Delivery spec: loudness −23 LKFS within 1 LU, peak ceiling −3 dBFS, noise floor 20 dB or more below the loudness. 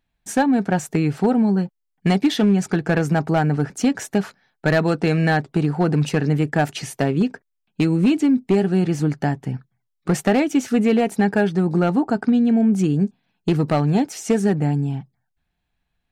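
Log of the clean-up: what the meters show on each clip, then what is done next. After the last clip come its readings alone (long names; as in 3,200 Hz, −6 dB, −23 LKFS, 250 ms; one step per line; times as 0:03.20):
share of clipped samples 0.7%; peaks flattened at −10.5 dBFS; integrated loudness −20.0 LKFS; sample peak −10.5 dBFS; target loudness −23.0 LKFS
→ clipped peaks rebuilt −10.5 dBFS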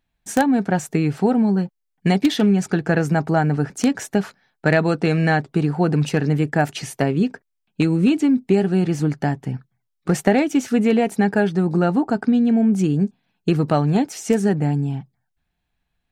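share of clipped samples 0.0%; integrated loudness −20.0 LKFS; sample peak −1.5 dBFS; target loudness −23.0 LKFS
→ level −3 dB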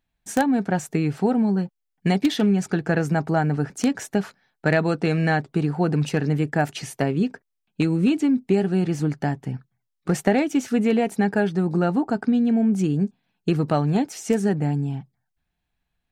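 integrated loudness −23.0 LKFS; sample peak −4.5 dBFS; background noise floor −78 dBFS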